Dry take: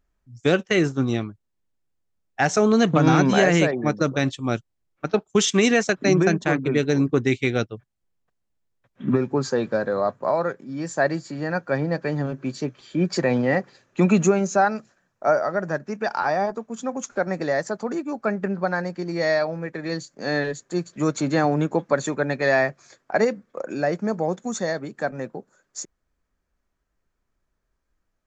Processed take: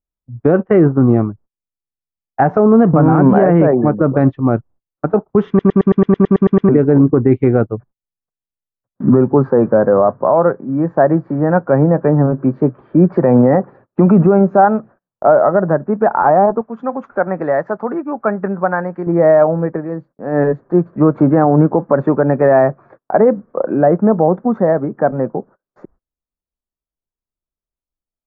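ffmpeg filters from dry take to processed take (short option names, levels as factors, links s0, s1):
-filter_complex "[0:a]asettb=1/sr,asplit=3[s0][s1][s2];[s0]atrim=end=16.614[s3];[s1]atrim=start=16.61:end=19.07,asetpts=PTS-STARTPTS,afade=t=in:d=0.004:c=qsin,afade=t=out:st=2.456:d=0.004:c=qsin,tiltshelf=f=1300:g=-8.5[s4];[s2]atrim=start=19.066[s5];[s3][s4]acrossfade=d=0.004:c1=hsin:c2=qsin[s6];[s6][s5]acrossfade=d=0.004:c1=qsin:c2=hsin,asplit=14[s7][s8][s9][s10][s11][s12][s13][s14][s15][s16][s17][s18][s19][s20];[s7]atrim=end=5.592[s21];[s8]atrim=start=5.478:end=5.592[s22];[s9]atrim=start=5.478:end=5.592[s23];[s10]atrim=start=5.478:end=5.592[s24];[s11]atrim=start=5.478:end=5.592[s25];[s12]atrim=start=5.478:end=5.592[s26];[s13]atrim=start=5.478:end=5.592[s27];[s14]atrim=start=5.478:end=5.592[s28];[s15]atrim=start=5.478:end=5.592[s29];[s16]atrim=start=5.478:end=5.592[s30];[s17]atrim=start=5.478:end=5.592[s31];[s18]atrim=start=6.688:end=19.86,asetpts=PTS-STARTPTS,afade=t=out:st=13.052:d=0.12:silence=0.375837[s32];[s19]atrim=start=19.86:end=20.31,asetpts=PTS-STARTPTS,volume=0.376[s33];[s20]atrim=start=20.31,asetpts=PTS-STARTPTS,afade=t=in:d=0.12:silence=0.375837[s34];[s21][s22]acrossfade=d=0.004:c1=hsin:c2=hsin[s35];[s35][s23]acrossfade=d=0.004:c1=hsin:c2=hsin[s36];[s36][s24]acrossfade=d=0.004:c1=hsin:c2=hsin[s37];[s37][s25]acrossfade=d=0.004:c1=hsin:c2=hsin[s38];[s38][s26]acrossfade=d=0.004:c1=hsin:c2=hsin[s39];[s39][s27]acrossfade=d=0.004:c1=hsin:c2=hsin[s40];[s40][s28]acrossfade=d=0.004:c1=hsin:c2=hsin[s41];[s41][s29]acrossfade=d=0.004:c1=hsin:c2=hsin[s42];[s42][s30]acrossfade=d=0.004:c1=hsin:c2=hsin[s43];[s43][s31]acrossfade=d=0.004:c1=hsin:c2=hsin[s44];[s32][s33][s34]concat=n=3:v=0:a=1[s45];[s44][s45]acrossfade=d=0.004:c1=hsin:c2=hsin,agate=range=0.0316:threshold=0.00316:ratio=16:detection=peak,lowpass=f=1200:w=0.5412,lowpass=f=1200:w=1.3066,alimiter=level_in=5.31:limit=0.891:release=50:level=0:latency=1,volume=0.891"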